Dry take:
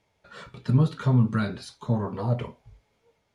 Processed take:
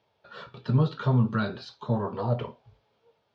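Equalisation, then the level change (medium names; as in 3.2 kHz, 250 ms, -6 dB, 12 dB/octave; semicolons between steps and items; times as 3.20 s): cabinet simulation 130–4600 Hz, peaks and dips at 180 Hz -6 dB, 280 Hz -7 dB, 2.1 kHz -10 dB; +2.0 dB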